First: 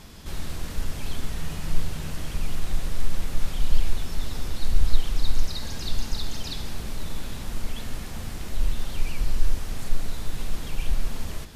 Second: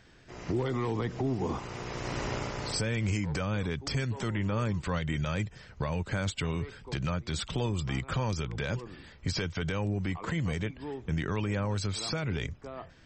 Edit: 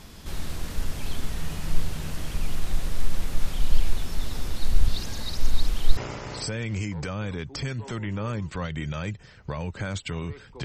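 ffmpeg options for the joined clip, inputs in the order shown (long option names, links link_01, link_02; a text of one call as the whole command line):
ffmpeg -i cue0.wav -i cue1.wav -filter_complex "[0:a]apad=whole_dur=10.64,atrim=end=10.64,asplit=2[link_01][link_02];[link_01]atrim=end=4.882[link_03];[link_02]atrim=start=4.878:end=5.972,asetpts=PTS-STARTPTS,areverse[link_04];[1:a]atrim=start=2.288:end=6.96[link_05];[link_03][link_04]acrossfade=duration=0.004:curve1=hsin:curve2=hsin[link_06];[link_06][link_05]acrossfade=duration=0.004:curve1=hsin:curve2=hsin" out.wav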